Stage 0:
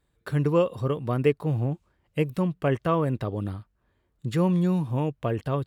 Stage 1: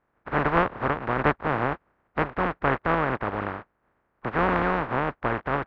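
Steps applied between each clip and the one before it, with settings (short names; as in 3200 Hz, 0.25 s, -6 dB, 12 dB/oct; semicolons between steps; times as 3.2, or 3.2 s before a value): spectral contrast lowered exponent 0.12; LPF 1600 Hz 24 dB/oct; gain +8 dB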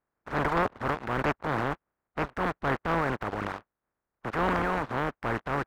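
reverb removal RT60 0.77 s; sample leveller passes 2; transient shaper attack -4 dB, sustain +8 dB; gain -8.5 dB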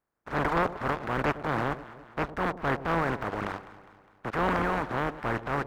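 echo with dull and thin repeats by turns 0.102 s, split 820 Hz, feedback 71%, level -13 dB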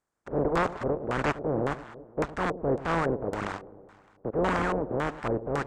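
LFO low-pass square 1.8 Hz 490–7800 Hz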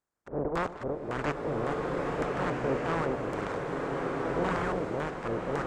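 bloom reverb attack 1.52 s, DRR -1 dB; gain -5 dB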